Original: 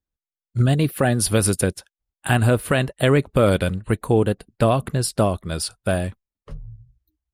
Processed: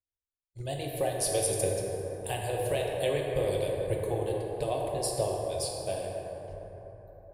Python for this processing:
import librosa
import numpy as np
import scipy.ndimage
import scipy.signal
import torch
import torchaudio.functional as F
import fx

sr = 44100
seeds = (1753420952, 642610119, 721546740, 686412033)

y = fx.hpss(x, sr, part='harmonic', gain_db=-11)
y = fx.fixed_phaser(y, sr, hz=560.0, stages=4)
y = fx.rev_plate(y, sr, seeds[0], rt60_s=4.2, hf_ratio=0.35, predelay_ms=0, drr_db=-2.0)
y = y * librosa.db_to_amplitude(-8.5)